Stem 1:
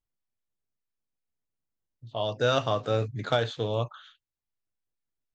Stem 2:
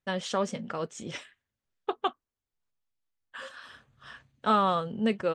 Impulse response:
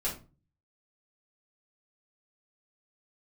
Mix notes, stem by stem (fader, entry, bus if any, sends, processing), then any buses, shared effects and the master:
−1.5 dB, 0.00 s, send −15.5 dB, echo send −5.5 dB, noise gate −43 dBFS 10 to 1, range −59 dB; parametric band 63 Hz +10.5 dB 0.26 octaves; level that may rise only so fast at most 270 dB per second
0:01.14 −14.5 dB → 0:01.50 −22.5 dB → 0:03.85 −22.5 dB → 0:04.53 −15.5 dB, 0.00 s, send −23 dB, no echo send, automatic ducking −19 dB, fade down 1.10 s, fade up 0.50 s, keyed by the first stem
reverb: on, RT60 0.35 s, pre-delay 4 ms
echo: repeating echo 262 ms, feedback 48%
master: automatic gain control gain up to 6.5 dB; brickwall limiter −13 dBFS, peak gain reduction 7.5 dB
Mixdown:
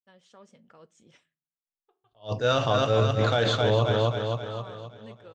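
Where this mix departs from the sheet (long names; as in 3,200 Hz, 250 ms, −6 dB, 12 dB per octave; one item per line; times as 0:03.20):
stem 1 −1.5 dB → +5.5 dB
stem 2 −14.5 dB → −26.5 dB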